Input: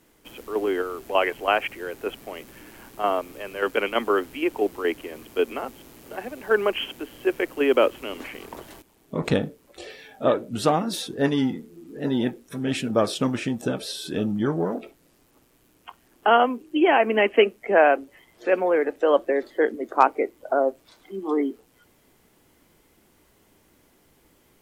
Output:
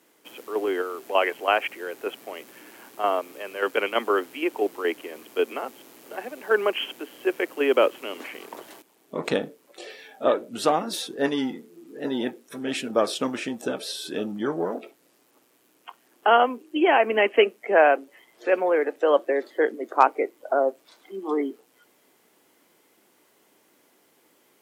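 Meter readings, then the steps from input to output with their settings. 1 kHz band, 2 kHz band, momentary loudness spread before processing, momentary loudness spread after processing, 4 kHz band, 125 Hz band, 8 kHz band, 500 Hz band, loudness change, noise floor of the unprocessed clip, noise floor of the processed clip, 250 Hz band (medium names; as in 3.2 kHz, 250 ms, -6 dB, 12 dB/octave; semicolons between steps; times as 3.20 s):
0.0 dB, 0.0 dB, 17 LU, 17 LU, 0.0 dB, -12.0 dB, 0.0 dB, -0.5 dB, -1.0 dB, -61 dBFS, -63 dBFS, -3.5 dB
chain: high-pass 300 Hz 12 dB/octave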